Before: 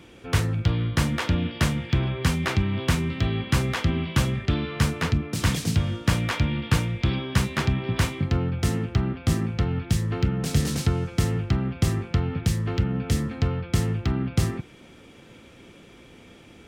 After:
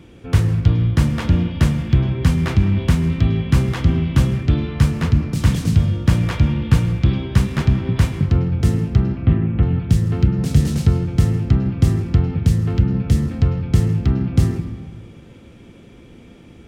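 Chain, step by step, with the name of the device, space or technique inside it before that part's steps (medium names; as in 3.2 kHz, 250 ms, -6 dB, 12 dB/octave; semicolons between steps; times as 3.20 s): 9.15–9.63 s: steep low-pass 3 kHz 36 dB/octave; saturated reverb return (on a send at -8.5 dB: reverberation RT60 1.4 s, pre-delay 96 ms + saturation -19 dBFS, distortion -16 dB); on the sum: bass shelf 370 Hz +11 dB; trim -2 dB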